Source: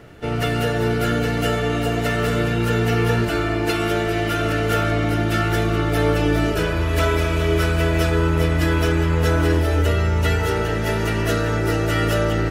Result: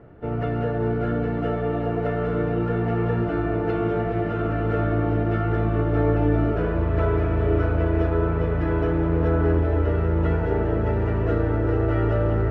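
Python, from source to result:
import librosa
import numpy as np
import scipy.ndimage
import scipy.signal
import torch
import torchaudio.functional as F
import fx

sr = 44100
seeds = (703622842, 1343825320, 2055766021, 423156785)

p1 = scipy.signal.sosfilt(scipy.signal.butter(2, 1100.0, 'lowpass', fs=sr, output='sos'), x)
p2 = p1 + fx.echo_diffused(p1, sr, ms=1178, feedback_pct=68, wet_db=-8, dry=0)
y = p2 * 10.0 ** (-3.0 / 20.0)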